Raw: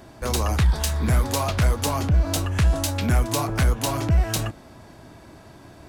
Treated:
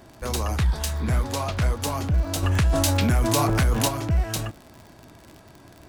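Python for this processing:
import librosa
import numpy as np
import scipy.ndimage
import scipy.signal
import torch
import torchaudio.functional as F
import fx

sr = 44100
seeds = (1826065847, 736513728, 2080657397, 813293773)

y = fx.high_shelf(x, sr, hz=11000.0, db=-9.5, at=(1.02, 1.8))
y = fx.dmg_crackle(y, sr, seeds[0], per_s=62.0, level_db=-31.0)
y = fx.env_flatten(y, sr, amount_pct=70, at=(2.42, 3.87), fade=0.02)
y = y * 10.0 ** (-3.0 / 20.0)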